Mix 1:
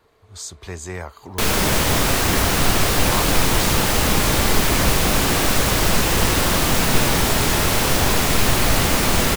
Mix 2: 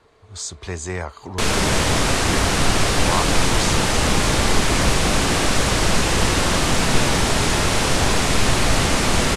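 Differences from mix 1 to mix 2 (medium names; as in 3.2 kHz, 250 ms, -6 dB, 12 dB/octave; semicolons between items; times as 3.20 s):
speech +3.5 dB; master: add low-pass 9.7 kHz 24 dB/octave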